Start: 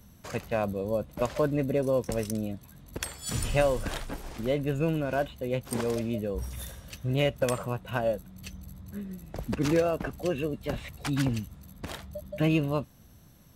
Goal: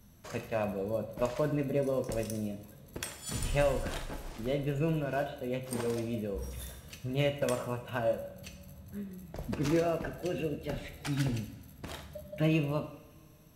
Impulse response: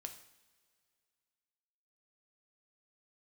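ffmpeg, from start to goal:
-filter_complex "[0:a]asettb=1/sr,asplit=3[link_01][link_02][link_03];[link_01]atrim=end=10.024[link_04];[link_02]atrim=start=10.02:end=11.84,asetpts=PTS-STARTPTS,afade=type=in:duration=0.004:curve=qsin,afade=type=out:start_time=1.816:duration=0.004:curve=qsin,bandreject=frequency=1100:width=5.3[link_05];[link_03]atrim=start=11.836[link_06];[link_04][link_05]acrossfade=duration=0.004:curve1=hsin:curve2=qsin[link_07];[link_07][link_06]acrossfade=duration=0.004:curve1=qsin:curve2=hsin[link_08];[1:a]atrim=start_sample=2205,asetrate=41454,aresample=44100[link_09];[link_08][link_09]afir=irnorm=-1:irlink=0"

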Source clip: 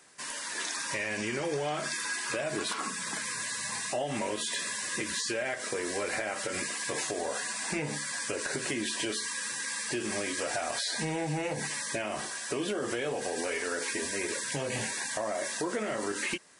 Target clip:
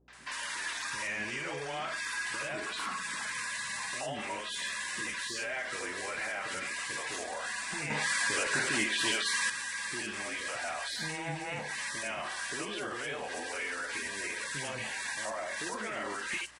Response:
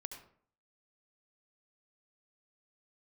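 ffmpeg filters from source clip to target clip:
-filter_complex "[0:a]acrossover=split=260|820|5100[link_01][link_02][link_03][link_04];[link_03]aeval=exprs='0.0794*sin(PI/2*1.78*val(0)/0.0794)':channel_layout=same[link_05];[link_01][link_02][link_05][link_04]amix=inputs=4:normalize=0,alimiter=level_in=4dB:limit=-24dB:level=0:latency=1:release=81,volume=-4dB,acrossover=split=430|4900[link_06][link_07][link_08];[link_07]adelay=80[link_09];[link_08]adelay=130[link_10];[link_06][link_09][link_10]amix=inputs=3:normalize=0,asettb=1/sr,asplit=3[link_11][link_12][link_13];[link_11]atrim=end=7.904[link_14];[link_12]atrim=start=7.9:end=9.5,asetpts=PTS-STARTPTS,afade=type=in:duration=0.004:curve=qsin,afade=type=out:start_time=1.596:duration=0.004:curve=qsin,acontrast=75[link_15];[link_13]atrim=start=9.496[link_16];[link_14][link_15]acrossfade=duration=0.004:curve1=hsin:curve2=qsin[link_17];[link_17][link_16]acrossfade=duration=0.004:curve1=qsin:curve2=hsin,aeval=exprs='val(0)+0.000398*(sin(2*PI*60*n/s)+sin(2*PI*2*60*n/s)/2+sin(2*PI*3*60*n/s)/3+sin(2*PI*4*60*n/s)/4+sin(2*PI*5*60*n/s)/5)':channel_layout=same"

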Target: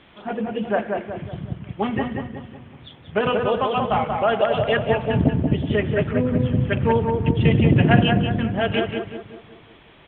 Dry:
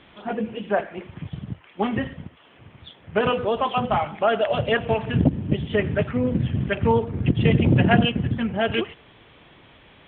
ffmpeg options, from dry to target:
ffmpeg -i in.wav -filter_complex "[0:a]asplit=2[link_01][link_02];[link_02]adelay=185,lowpass=frequency=2000:poles=1,volume=-3.5dB,asplit=2[link_03][link_04];[link_04]adelay=185,lowpass=frequency=2000:poles=1,volume=0.47,asplit=2[link_05][link_06];[link_06]adelay=185,lowpass=frequency=2000:poles=1,volume=0.47,asplit=2[link_07][link_08];[link_08]adelay=185,lowpass=frequency=2000:poles=1,volume=0.47,asplit=2[link_09][link_10];[link_10]adelay=185,lowpass=frequency=2000:poles=1,volume=0.47,asplit=2[link_11][link_12];[link_12]adelay=185,lowpass=frequency=2000:poles=1,volume=0.47[link_13];[link_01][link_03][link_05][link_07][link_09][link_11][link_13]amix=inputs=7:normalize=0" out.wav

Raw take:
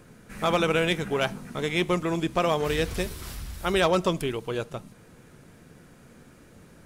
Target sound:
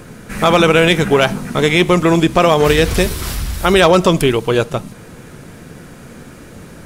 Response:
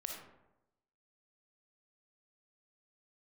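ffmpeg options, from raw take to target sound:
-af "alimiter=level_in=16.5dB:limit=-1dB:release=50:level=0:latency=1,volume=-1dB"

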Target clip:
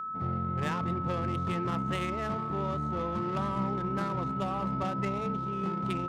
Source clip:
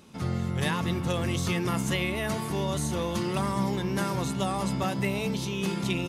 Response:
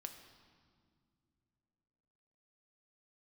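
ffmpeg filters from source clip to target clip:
-af "adynamicsmooth=sensitivity=2.5:basefreq=600,aeval=exprs='val(0)+0.0316*sin(2*PI*1300*n/s)':channel_layout=same,volume=-4dB"

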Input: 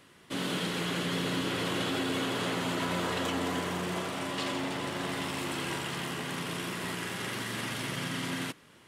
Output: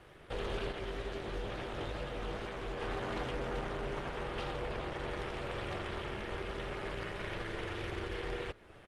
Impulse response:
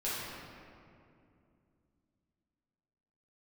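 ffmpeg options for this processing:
-filter_complex "[0:a]acrossover=split=7400[link_01][link_02];[link_02]acompressor=threshold=-57dB:ratio=4:attack=1:release=60[link_03];[link_01][link_03]amix=inputs=2:normalize=0,bass=frequency=250:gain=4,treble=frequency=4000:gain=-12,acompressor=threshold=-47dB:ratio=1.5,aeval=exprs='0.0237*(abs(mod(val(0)/0.0237+3,4)-2)-1)':channel_layout=same,aeval=exprs='val(0)*sin(2*PI*220*n/s)':channel_layout=same,asettb=1/sr,asplit=3[link_04][link_05][link_06];[link_04]atrim=end=0.724[link_07];[link_05]atrim=start=0.72:end=2.81,asetpts=PTS-STARTPTS,afade=type=in:duration=0.004:curve=qsin,afade=type=out:start_time=2.086:duration=0.004:curve=qsin,flanger=delay=15.5:depth=5.5:speed=2.2[link_08];[link_06]atrim=start=2.806[link_09];[link_07][link_08]acrossfade=duration=0.004:curve1=hsin:curve2=qsin[link_10];[link_10][link_09]acrossfade=duration=0.004:curve1=qsin:curve2=hsin,asplit=2[link_11][link_12];[link_12]adelay=1341,volume=-22dB,highshelf=frequency=4000:gain=-30.2[link_13];[link_11][link_13]amix=inputs=2:normalize=0,aresample=32000,aresample=44100,volume=5.5dB" -ar 48000 -c:a libopus -b:a 24k

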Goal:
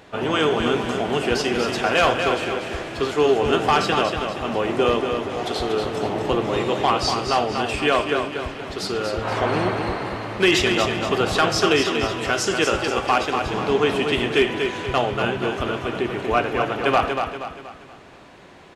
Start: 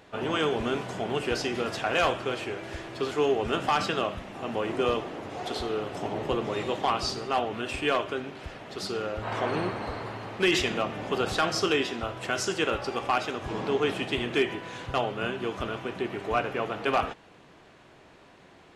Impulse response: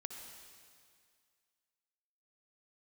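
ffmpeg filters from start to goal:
-af "aecho=1:1:238|476|714|952|1190:0.501|0.216|0.0927|0.0398|0.0171,volume=6.5dB"

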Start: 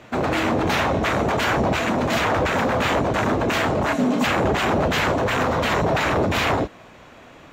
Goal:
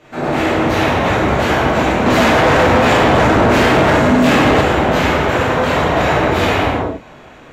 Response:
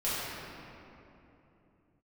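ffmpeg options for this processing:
-filter_complex "[1:a]atrim=start_sample=2205,afade=type=out:start_time=0.28:duration=0.01,atrim=end_sample=12789,asetrate=29988,aresample=44100[link_01];[0:a][link_01]afir=irnorm=-1:irlink=0,asettb=1/sr,asplit=3[link_02][link_03][link_04];[link_02]atrim=end=2.064[link_05];[link_03]atrim=start=2.06:end=4.61,asetpts=PTS-STARTPTS,afade=type=in:duration=0.004:curve=qsin,afade=type=out:start_time=2.546:duration=0.004:curve=qsin,acontrast=75[link_06];[link_04]atrim=start=4.606[link_07];[link_05][link_06]acrossfade=duration=0.004:curve1=hsin:curve2=qsin[link_08];[link_08][link_07]acrossfade=duration=0.004:curve1=qsin:curve2=hsin,volume=-5dB"

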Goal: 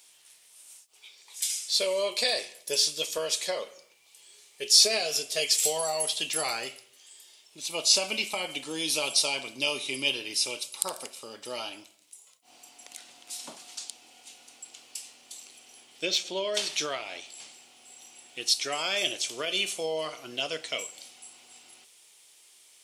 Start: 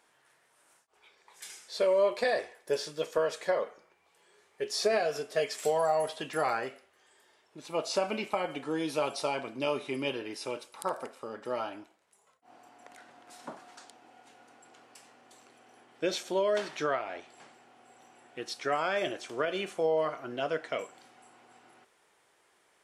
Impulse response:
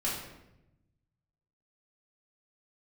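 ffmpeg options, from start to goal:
-filter_complex "[0:a]asettb=1/sr,asplit=3[link_01][link_02][link_03];[link_01]atrim=end=16.054[link_04];[link_02]atrim=start=16.05:end=16.54,asetpts=PTS-STARTPTS,afade=type=in:duration=0.004:curve=qsin,afade=type=out:start_time=0.486:duration=0.004:curve=qsin,adynamicsmooth=sensitivity=1.5:basefreq=4000[link_05];[link_03]atrim=start=16.536[link_06];[link_04][link_05]acrossfade=duration=0.004:curve1=hsin:curve2=qsin[link_07];[link_07][link_06]acrossfade=duration=0.004:curve1=qsin:curve2=hsin,aexciter=amount=7.5:drive=5.9:freq=2400,asplit=2[link_08][link_09];[1:a]atrim=start_sample=2205,afade=type=out:start_time=0.37:duration=0.01,atrim=end_sample=16758[link_10];[link_09][link_10]afir=irnorm=-1:irlink=0,volume=-24dB[link_11];[link_08][link_11]amix=inputs=2:normalize=0,volume=-4.5dB"

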